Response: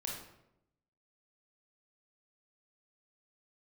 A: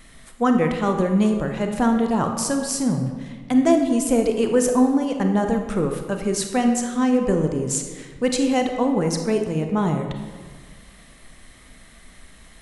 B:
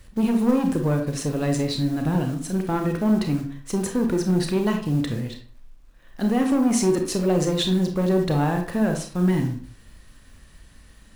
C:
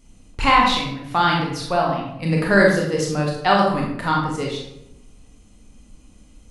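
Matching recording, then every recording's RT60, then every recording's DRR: C; 1.6, 0.50, 0.85 seconds; 4.5, 3.5, −2.0 decibels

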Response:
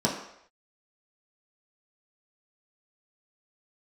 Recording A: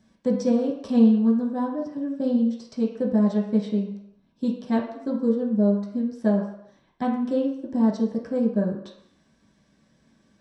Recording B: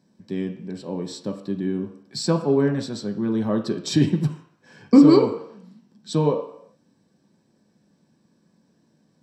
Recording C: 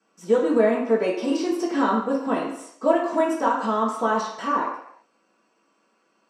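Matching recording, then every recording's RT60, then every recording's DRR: A; non-exponential decay, non-exponential decay, non-exponential decay; −4.5, 3.0, −13.5 decibels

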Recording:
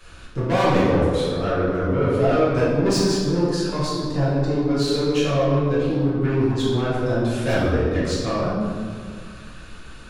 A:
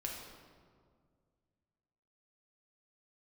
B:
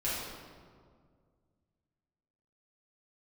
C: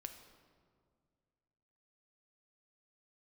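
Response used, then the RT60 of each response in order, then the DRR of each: B; 2.0, 2.0, 2.0 seconds; −1.5, −10.0, 6.0 decibels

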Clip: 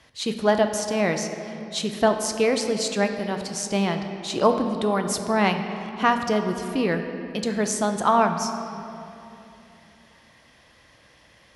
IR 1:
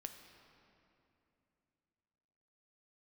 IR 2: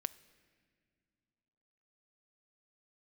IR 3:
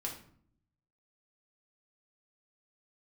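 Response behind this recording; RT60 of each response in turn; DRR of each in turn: 1; 2.9 s, non-exponential decay, 0.55 s; 5.5, 14.5, −2.0 decibels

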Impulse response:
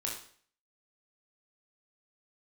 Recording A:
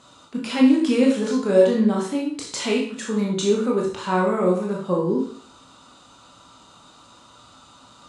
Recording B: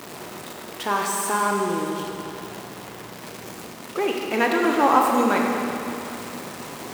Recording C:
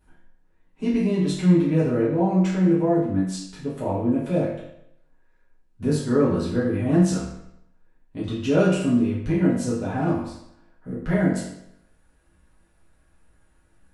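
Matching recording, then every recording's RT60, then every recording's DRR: A; 0.50, 3.0, 0.75 seconds; −2.5, 0.0, −9.0 decibels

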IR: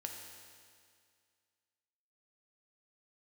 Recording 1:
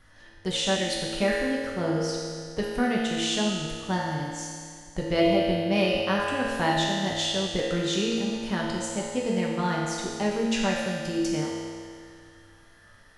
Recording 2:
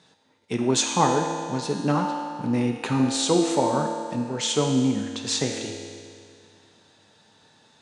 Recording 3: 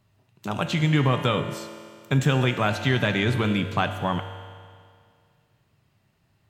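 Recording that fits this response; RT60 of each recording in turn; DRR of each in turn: 2; 2.1, 2.1, 2.1 seconds; −5.0, 1.5, 6.0 decibels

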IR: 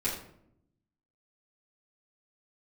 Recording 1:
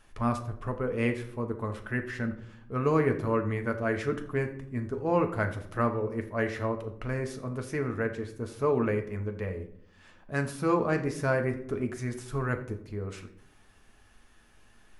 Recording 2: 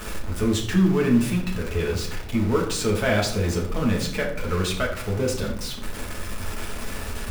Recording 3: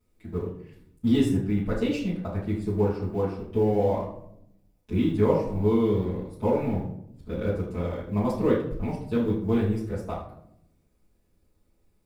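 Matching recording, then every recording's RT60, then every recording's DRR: 3; 0.75, 0.75, 0.70 seconds; 4.5, −2.5, −11.0 decibels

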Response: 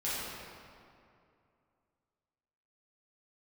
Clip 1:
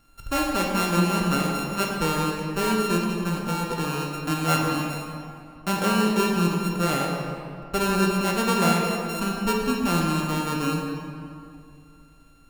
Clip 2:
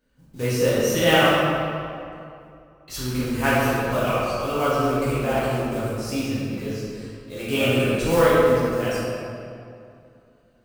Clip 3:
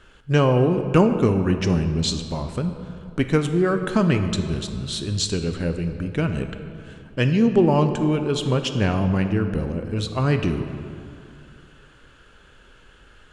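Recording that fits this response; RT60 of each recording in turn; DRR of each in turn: 2; 2.5, 2.5, 2.5 seconds; −1.5, −10.5, 7.0 decibels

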